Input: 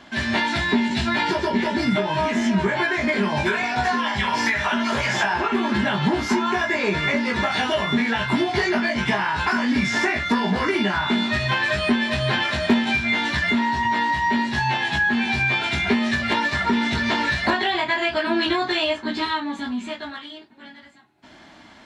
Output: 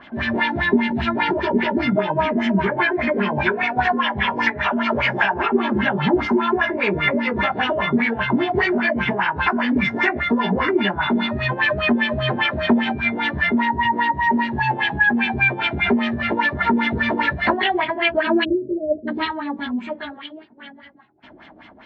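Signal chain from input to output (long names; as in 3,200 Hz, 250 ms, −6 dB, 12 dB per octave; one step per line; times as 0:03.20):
time-frequency box erased 0:18.44–0:19.08, 660–8,200 Hz
auto-filter low-pass sine 5 Hz 380–3,100 Hz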